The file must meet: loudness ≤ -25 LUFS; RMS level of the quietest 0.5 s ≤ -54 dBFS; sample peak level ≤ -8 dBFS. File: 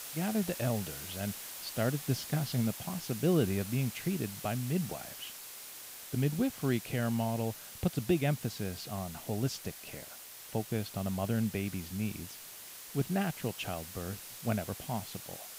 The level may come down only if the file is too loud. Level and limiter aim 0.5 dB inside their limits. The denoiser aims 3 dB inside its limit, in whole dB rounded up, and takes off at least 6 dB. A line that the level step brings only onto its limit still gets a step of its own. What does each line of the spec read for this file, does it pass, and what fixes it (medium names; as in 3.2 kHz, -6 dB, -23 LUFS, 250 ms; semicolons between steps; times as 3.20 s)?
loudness -34.5 LUFS: pass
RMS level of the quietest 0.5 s -49 dBFS: fail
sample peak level -17.0 dBFS: pass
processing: noise reduction 8 dB, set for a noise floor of -49 dBFS